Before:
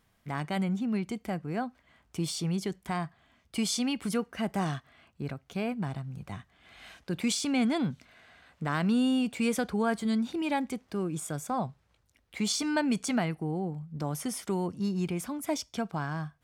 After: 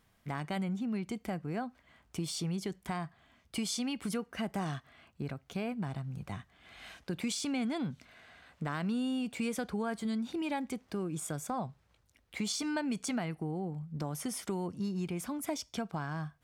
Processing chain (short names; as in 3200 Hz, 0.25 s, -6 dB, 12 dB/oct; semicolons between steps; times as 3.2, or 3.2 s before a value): compressor 2.5:1, threshold -34 dBFS, peak gain reduction 8 dB